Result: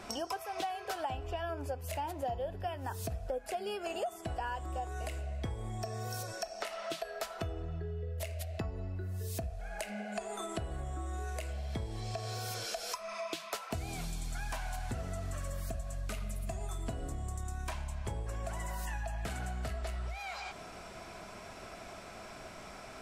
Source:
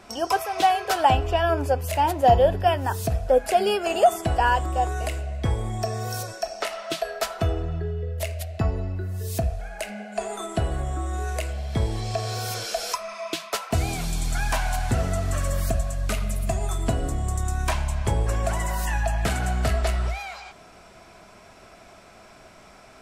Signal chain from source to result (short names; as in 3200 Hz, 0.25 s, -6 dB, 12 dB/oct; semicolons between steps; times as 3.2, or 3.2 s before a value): compressor 5:1, threshold -38 dBFS, peak gain reduction 23 dB; gain +1 dB